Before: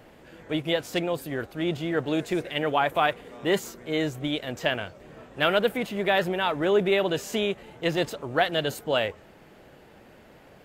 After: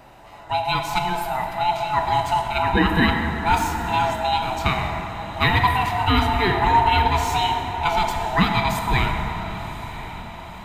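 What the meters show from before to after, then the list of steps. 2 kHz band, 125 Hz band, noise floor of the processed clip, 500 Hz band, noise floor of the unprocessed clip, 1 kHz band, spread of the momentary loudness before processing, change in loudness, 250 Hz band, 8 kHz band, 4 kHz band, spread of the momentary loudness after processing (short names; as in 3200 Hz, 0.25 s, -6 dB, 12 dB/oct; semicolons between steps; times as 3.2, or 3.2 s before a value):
+5.5 dB, +11.0 dB, -38 dBFS, -2.5 dB, -52 dBFS, +12.0 dB, 8 LU, +5.5 dB, +3.0 dB, +5.0 dB, +4.0 dB, 12 LU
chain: band-swap scrambler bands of 500 Hz; on a send: diffused feedback echo 1.034 s, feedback 54%, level -14 dB; on the sum: plate-style reverb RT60 3.3 s, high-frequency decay 0.45×, DRR 2.5 dB; gain +4 dB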